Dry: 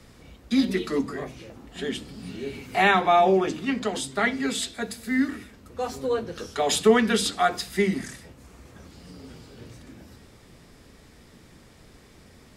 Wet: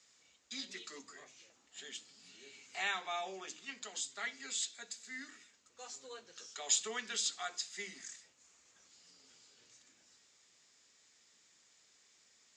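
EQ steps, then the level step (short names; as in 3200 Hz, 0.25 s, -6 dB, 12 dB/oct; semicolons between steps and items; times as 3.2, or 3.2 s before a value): band-pass 7100 Hz, Q 6.8; air absorption 170 m; +15.0 dB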